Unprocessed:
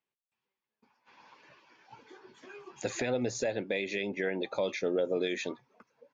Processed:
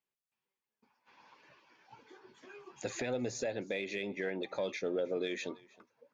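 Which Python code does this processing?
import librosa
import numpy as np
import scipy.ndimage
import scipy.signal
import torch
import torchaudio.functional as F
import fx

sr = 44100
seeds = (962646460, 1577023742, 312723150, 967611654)

p1 = 10.0 ** (-32.0 / 20.0) * np.tanh(x / 10.0 ** (-32.0 / 20.0))
p2 = x + F.gain(torch.from_numpy(p1), -12.0).numpy()
p3 = p2 + 10.0 ** (-23.5 / 20.0) * np.pad(p2, (int(316 * sr / 1000.0), 0))[:len(p2)]
y = F.gain(torch.from_numpy(p3), -5.5).numpy()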